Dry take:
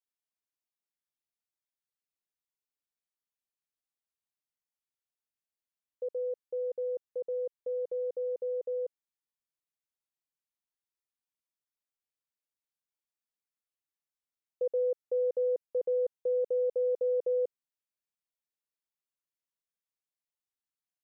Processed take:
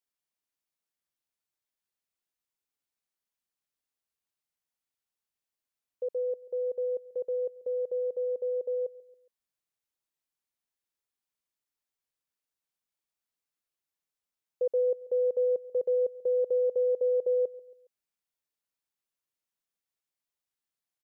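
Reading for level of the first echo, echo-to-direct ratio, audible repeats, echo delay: -20.5 dB, -19.5 dB, 3, 138 ms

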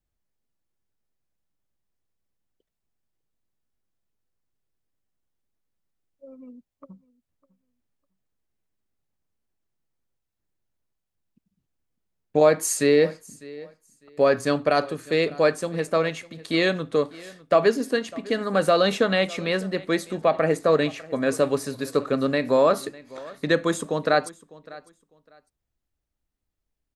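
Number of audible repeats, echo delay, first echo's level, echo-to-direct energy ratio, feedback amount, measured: 2, 602 ms, -21.0 dB, -21.0 dB, 21%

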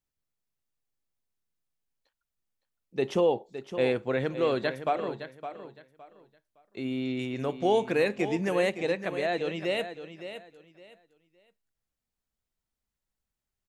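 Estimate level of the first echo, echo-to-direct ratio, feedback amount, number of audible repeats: -11.0 dB, -10.5 dB, 24%, 2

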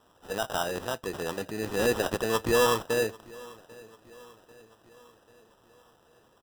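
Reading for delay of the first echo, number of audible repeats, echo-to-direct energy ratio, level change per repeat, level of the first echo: 792 ms, 3, -21.0 dB, -5.5 dB, -22.5 dB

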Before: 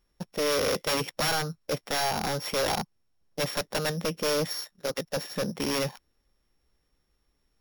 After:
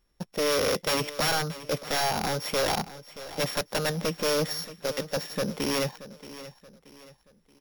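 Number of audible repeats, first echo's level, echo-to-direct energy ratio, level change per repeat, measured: 3, -15.5 dB, -15.0 dB, -8.0 dB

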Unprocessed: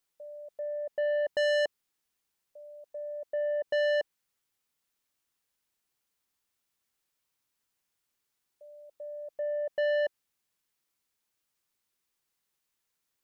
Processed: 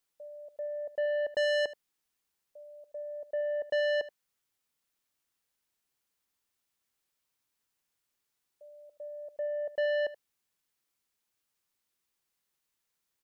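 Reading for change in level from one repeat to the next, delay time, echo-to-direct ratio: no regular repeats, 77 ms, -17.0 dB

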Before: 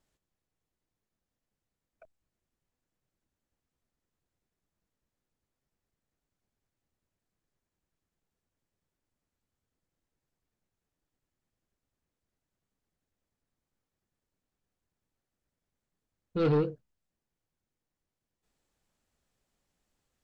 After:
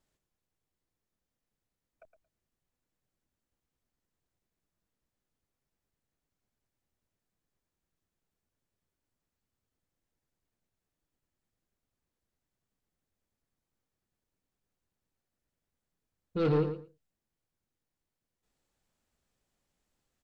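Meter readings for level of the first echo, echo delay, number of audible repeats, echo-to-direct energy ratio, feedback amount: -10.5 dB, 113 ms, 2, -10.5 dB, 15%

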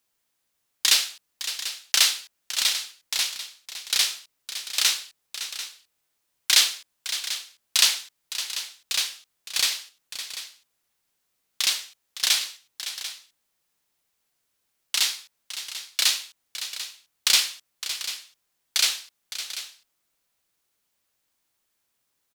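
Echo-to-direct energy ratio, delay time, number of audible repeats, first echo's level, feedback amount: -9.5 dB, 561 ms, 2, -12.0 dB, no regular repeats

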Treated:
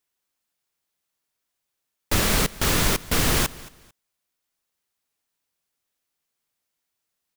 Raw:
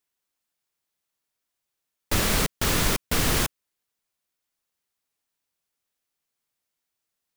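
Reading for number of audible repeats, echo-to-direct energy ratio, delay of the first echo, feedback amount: 2, -20.0 dB, 223 ms, 26%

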